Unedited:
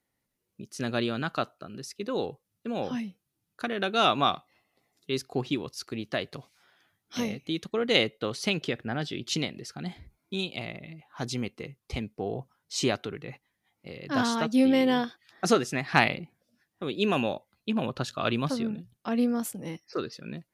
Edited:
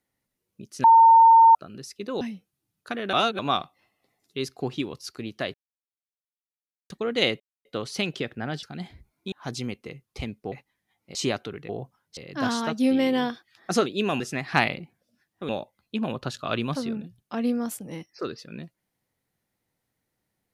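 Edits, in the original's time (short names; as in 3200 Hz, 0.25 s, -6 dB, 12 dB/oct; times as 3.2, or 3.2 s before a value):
0.84–1.55 bleep 909 Hz -10 dBFS
2.21–2.94 cut
3.86–4.12 reverse
6.27–7.63 mute
8.13 insert silence 0.25 s
9.11–9.69 cut
10.38–11.06 cut
12.26–12.74 swap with 13.28–13.91
16.89–17.23 move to 15.6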